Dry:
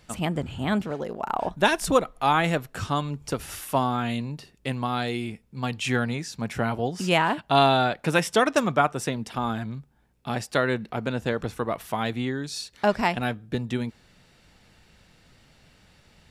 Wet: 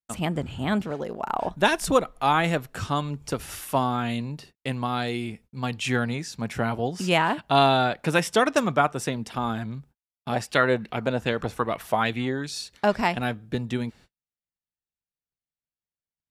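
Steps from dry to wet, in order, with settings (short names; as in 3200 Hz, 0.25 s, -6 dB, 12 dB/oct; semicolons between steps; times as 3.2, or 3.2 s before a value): gate -49 dBFS, range -47 dB; 10.32–12.51 LFO bell 2.5 Hz 550–3100 Hz +9 dB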